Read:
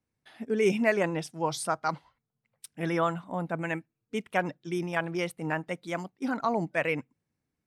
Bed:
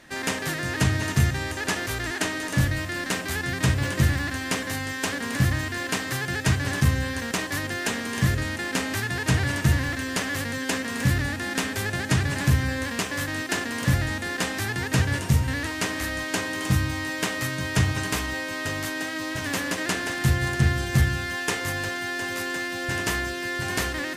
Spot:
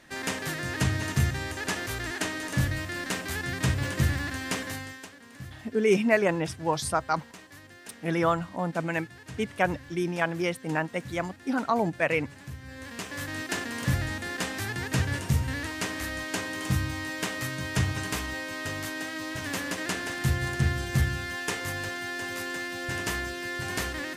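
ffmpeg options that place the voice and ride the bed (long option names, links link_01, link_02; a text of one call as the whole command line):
ffmpeg -i stem1.wav -i stem2.wav -filter_complex "[0:a]adelay=5250,volume=2.5dB[link_01];[1:a]volume=12dB,afade=type=out:start_time=4.62:duration=0.47:silence=0.149624,afade=type=in:start_time=12.61:duration=0.82:silence=0.158489[link_02];[link_01][link_02]amix=inputs=2:normalize=0" out.wav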